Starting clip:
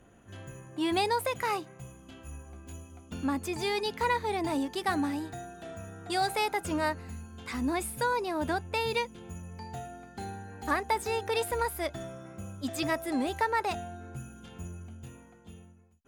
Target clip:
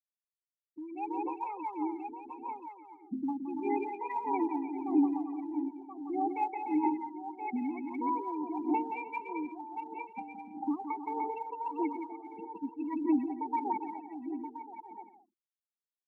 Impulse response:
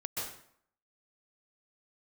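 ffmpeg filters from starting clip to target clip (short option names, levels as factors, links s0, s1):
-filter_complex "[0:a]asplit=3[s0][s1][s2];[s0]bandpass=f=300:t=q:w=8,volume=1[s3];[s1]bandpass=f=870:t=q:w=8,volume=0.501[s4];[s2]bandpass=f=2240:t=q:w=8,volume=0.355[s5];[s3][s4][s5]amix=inputs=3:normalize=0,equalizer=f=3200:w=1.1:g=-4,afftfilt=real='re*gte(hypot(re,im),0.0178)':imag='im*gte(hypot(re,im),0.0178)':win_size=1024:overlap=0.75,asplit=2[s6][s7];[s7]aecho=0:1:1026:0.141[s8];[s6][s8]amix=inputs=2:normalize=0,acompressor=threshold=0.00141:ratio=2,asplit=2[s9][s10];[s10]aecho=0:1:170|297.5|393.1|464.8|518.6:0.631|0.398|0.251|0.158|0.1[s11];[s9][s11]amix=inputs=2:normalize=0,dynaudnorm=f=230:g=9:m=5.62,highshelf=f=7000:t=q:w=3:g=7.5,aphaser=in_gain=1:out_gain=1:delay=1.7:decay=0.51:speed=1.6:type=sinusoidal"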